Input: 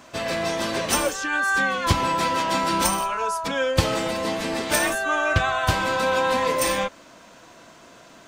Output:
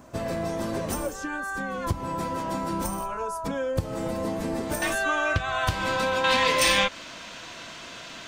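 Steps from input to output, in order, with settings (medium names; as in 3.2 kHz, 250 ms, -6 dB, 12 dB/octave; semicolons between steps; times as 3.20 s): bass shelf 170 Hz +8 dB; compression 6:1, threshold -23 dBFS, peak gain reduction 14 dB; peaking EQ 3.2 kHz -12.5 dB 2.4 oct, from 4.82 s +3 dB, from 6.24 s +13.5 dB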